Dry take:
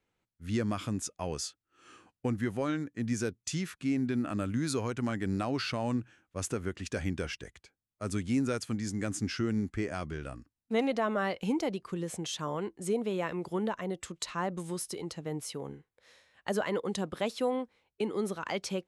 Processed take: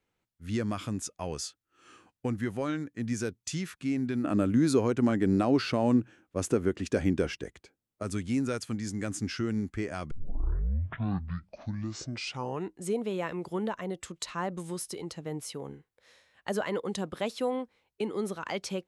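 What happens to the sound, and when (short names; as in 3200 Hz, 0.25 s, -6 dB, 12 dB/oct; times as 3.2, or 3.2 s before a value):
4.24–8.03 bell 340 Hz +9.5 dB 2.3 oct
10.11 tape start 2.74 s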